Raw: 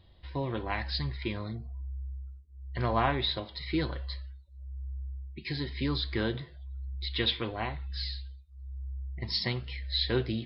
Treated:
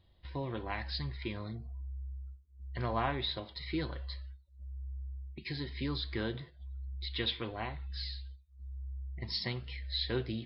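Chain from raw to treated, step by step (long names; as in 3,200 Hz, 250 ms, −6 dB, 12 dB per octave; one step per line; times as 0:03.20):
noise gate −45 dBFS, range −8 dB
in parallel at +1.5 dB: downward compressor, threshold −46 dBFS, peak gain reduction 22 dB
on the sum: level −6.5 dB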